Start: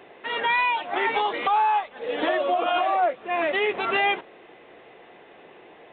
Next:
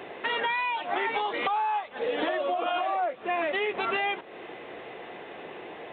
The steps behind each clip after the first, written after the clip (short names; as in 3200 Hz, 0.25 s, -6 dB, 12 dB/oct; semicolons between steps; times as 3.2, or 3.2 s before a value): HPF 41 Hz; compressor 5:1, threshold -34 dBFS, peak gain reduction 14 dB; gain +7 dB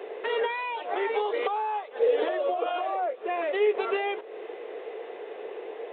resonant high-pass 440 Hz, resonance Q 5.4; gain -5 dB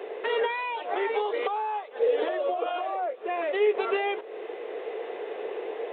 vocal rider within 4 dB 2 s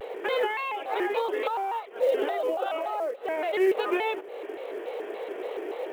short-mantissa float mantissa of 4-bit; shaped vibrato square 3.5 Hz, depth 160 cents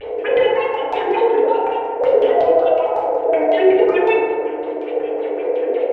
LFO low-pass square 5.4 Hz 650–2700 Hz; phaser stages 4, 3.9 Hz, lowest notch 180–3200 Hz; FDN reverb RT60 2.2 s, low-frequency decay 0.95×, high-frequency decay 0.3×, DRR -5.5 dB; gain +3.5 dB